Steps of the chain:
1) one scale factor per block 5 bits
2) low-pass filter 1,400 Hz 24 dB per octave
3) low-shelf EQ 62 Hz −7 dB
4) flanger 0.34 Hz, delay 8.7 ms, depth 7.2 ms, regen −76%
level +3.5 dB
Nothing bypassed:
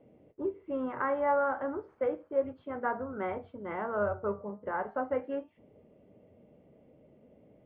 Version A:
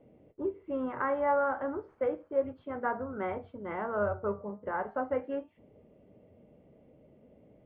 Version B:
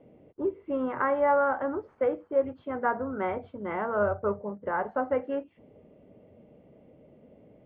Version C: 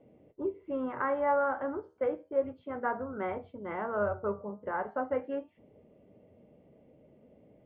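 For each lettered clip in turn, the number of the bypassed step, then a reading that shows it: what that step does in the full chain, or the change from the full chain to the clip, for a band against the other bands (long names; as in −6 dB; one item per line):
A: 3, 125 Hz band +1.5 dB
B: 4, change in integrated loudness +4.5 LU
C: 1, distortion level −23 dB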